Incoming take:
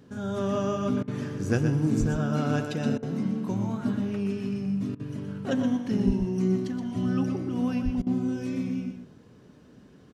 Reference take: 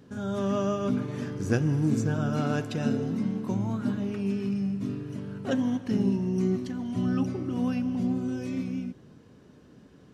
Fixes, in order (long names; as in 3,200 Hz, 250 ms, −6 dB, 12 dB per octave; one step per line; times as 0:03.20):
high-pass at the plosives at 0:01.99/0:06.06/0:07.84
repair the gap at 0:01.03/0:02.98/0:04.95/0:08.02, 45 ms
echo removal 123 ms −7.5 dB